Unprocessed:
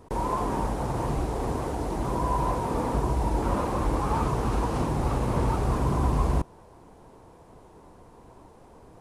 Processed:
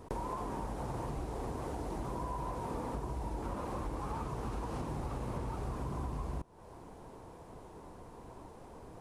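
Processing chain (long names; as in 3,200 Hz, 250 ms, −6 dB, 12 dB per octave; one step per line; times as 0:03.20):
downward compressor 6 to 1, threshold −36 dBFS, peak gain reduction 16 dB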